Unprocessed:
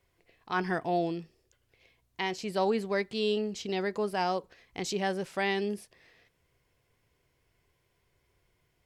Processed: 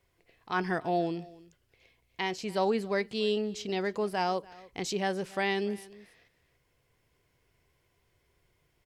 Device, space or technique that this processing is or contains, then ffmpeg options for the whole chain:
ducked delay: -filter_complex "[0:a]asplit=3[s0][s1][s2];[s1]adelay=288,volume=0.531[s3];[s2]apad=whole_len=403288[s4];[s3][s4]sidechaincompress=threshold=0.00562:ratio=5:attack=9:release=1150[s5];[s0][s5]amix=inputs=2:normalize=0"

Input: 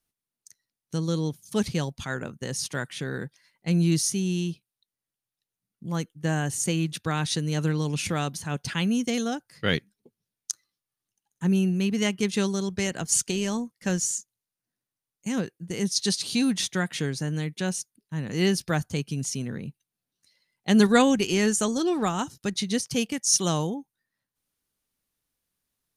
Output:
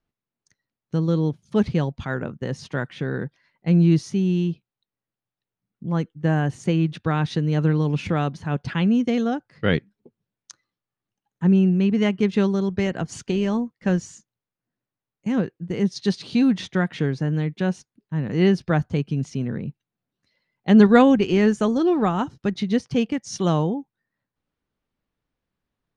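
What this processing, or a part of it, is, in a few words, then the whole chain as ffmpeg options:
phone in a pocket: -af "lowpass=3900,highshelf=f=2200:g=-11.5,volume=2"

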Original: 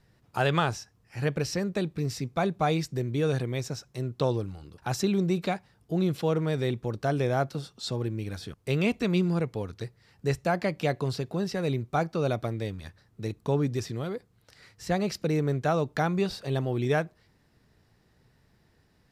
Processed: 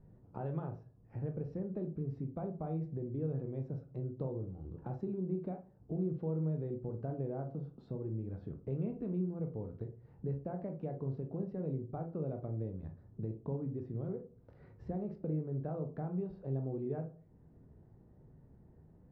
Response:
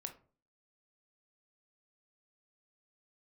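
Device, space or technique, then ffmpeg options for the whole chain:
television next door: -filter_complex "[0:a]acompressor=threshold=0.00562:ratio=3,lowpass=530[s0];[1:a]atrim=start_sample=2205[s1];[s0][s1]afir=irnorm=-1:irlink=0,volume=2.66"

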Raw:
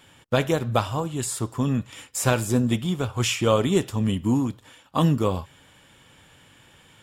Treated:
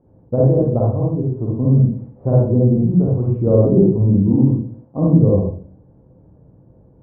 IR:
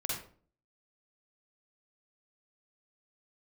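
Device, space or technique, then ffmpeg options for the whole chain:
next room: -filter_complex "[0:a]lowpass=f=590:w=0.5412,lowpass=f=590:w=1.3066[s0];[1:a]atrim=start_sample=2205[s1];[s0][s1]afir=irnorm=-1:irlink=0,volume=1.78"

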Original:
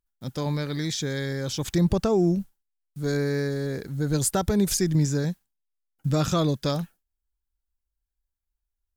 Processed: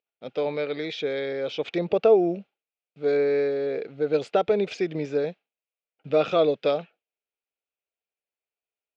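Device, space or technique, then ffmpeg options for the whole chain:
phone earpiece: -af "highpass=430,equalizer=f=460:t=q:w=4:g=9,equalizer=f=650:t=q:w=4:g=6,equalizer=f=1000:t=q:w=4:g=-9,equalizer=f=1700:t=q:w=4:g=-8,equalizer=f=2500:t=q:w=4:g=8,lowpass=f=3200:w=0.5412,lowpass=f=3200:w=1.3066,volume=1.41"

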